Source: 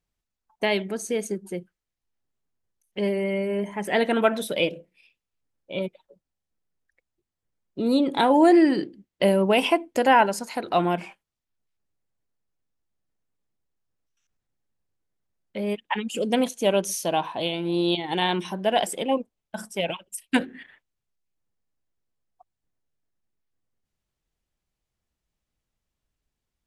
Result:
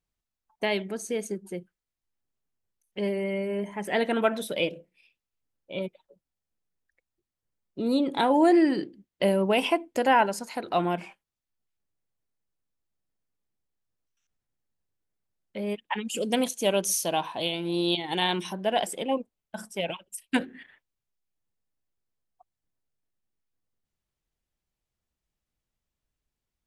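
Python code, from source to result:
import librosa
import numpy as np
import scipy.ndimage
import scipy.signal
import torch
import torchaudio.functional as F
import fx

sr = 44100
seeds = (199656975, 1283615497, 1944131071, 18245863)

y = fx.high_shelf(x, sr, hz=3600.0, db=8.0, at=(16.05, 18.53))
y = y * librosa.db_to_amplitude(-3.5)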